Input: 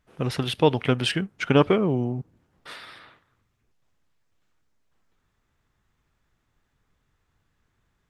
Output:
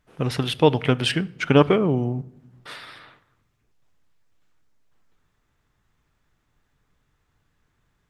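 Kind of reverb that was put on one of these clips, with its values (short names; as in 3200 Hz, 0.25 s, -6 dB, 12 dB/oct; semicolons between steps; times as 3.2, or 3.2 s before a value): shoebox room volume 3100 m³, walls furnished, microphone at 0.4 m; gain +2 dB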